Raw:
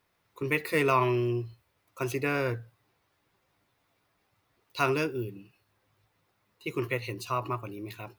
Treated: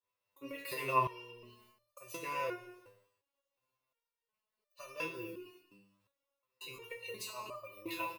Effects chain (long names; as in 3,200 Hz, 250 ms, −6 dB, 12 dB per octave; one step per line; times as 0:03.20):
downward expander −58 dBFS
volume swells 304 ms
high-shelf EQ 2,700 Hz +10 dB
downward compressor 12 to 1, threshold −39 dBFS, peak gain reduction 18.5 dB
hum removal 49.45 Hz, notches 6
hollow resonant body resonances 550/1,000/2,700 Hz, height 15 dB, ringing for 35 ms
far-end echo of a speakerphone 180 ms, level −19 dB
reverb whose tail is shaped and stops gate 400 ms falling, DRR 7.5 dB
step-sequenced resonator 2.8 Hz 100–600 Hz
level +11 dB